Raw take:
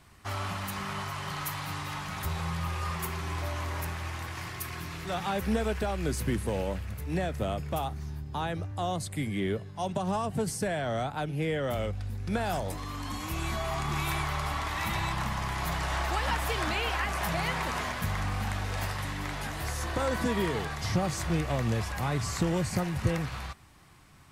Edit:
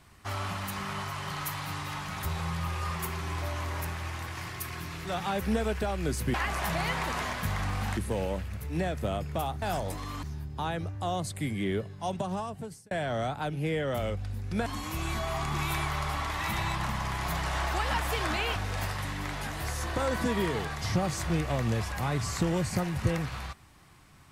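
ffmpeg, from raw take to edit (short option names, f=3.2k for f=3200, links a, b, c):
-filter_complex "[0:a]asplit=8[a][b][c][d][e][f][g][h];[a]atrim=end=6.342[i];[b]atrim=start=16.928:end=18.562[j];[c]atrim=start=6.338:end=7.992[k];[d]atrim=start=12.418:end=13.032[l];[e]atrim=start=7.988:end=10.67,asetpts=PTS-STARTPTS,afade=t=out:st=1.862:d=0.82[m];[f]atrim=start=10.67:end=12.422,asetpts=PTS-STARTPTS,afade=t=in:d=0.004:c=hsin[n];[g]atrim=start=13.028:end=16.932[o];[h]atrim=start=18.558[p];[i][j]acrossfade=d=0.004:c1=hsin:c2=hsin[q];[q][k]acrossfade=d=0.004:c1=hsin:c2=hsin[r];[r][l]acrossfade=d=0.004:c1=hsin:c2=hsin[s];[m][n]concat=n=2:v=0:a=1[t];[s][t]acrossfade=d=0.004:c1=hsin:c2=hsin[u];[u][o]acrossfade=d=0.004:c1=hsin:c2=hsin[v];[v][p]acrossfade=d=0.004:c1=hsin:c2=hsin"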